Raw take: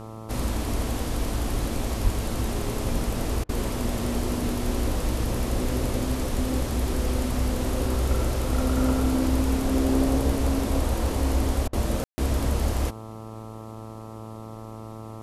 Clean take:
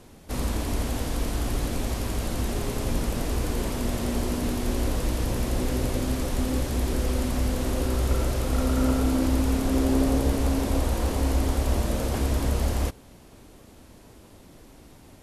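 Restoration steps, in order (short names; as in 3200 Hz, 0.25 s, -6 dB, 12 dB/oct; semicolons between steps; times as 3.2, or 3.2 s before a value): de-hum 110.5 Hz, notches 12; 2.03–2.15 HPF 140 Hz 24 dB/oct; room tone fill 12.04–12.18; interpolate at 3.44/11.68, 49 ms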